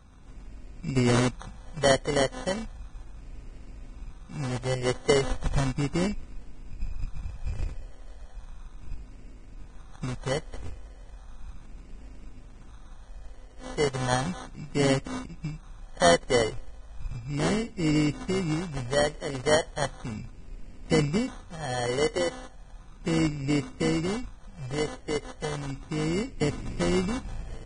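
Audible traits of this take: a buzz of ramps at a fixed pitch in blocks of 16 samples; phasing stages 4, 0.35 Hz, lowest notch 210–1200 Hz; aliases and images of a low sample rate 2500 Hz, jitter 0%; Vorbis

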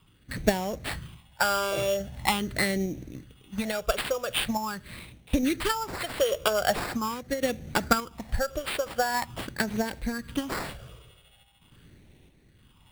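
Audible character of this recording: random-step tremolo 3.5 Hz; phasing stages 8, 0.43 Hz, lowest notch 240–1200 Hz; aliases and images of a low sample rate 6200 Hz, jitter 0%

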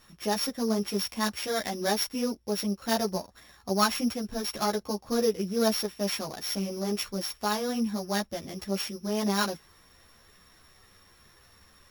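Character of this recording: a buzz of ramps at a fixed pitch in blocks of 8 samples; a shimmering, thickened sound

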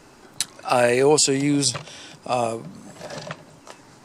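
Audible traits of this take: noise floor -50 dBFS; spectral tilt -3.5 dB/oct

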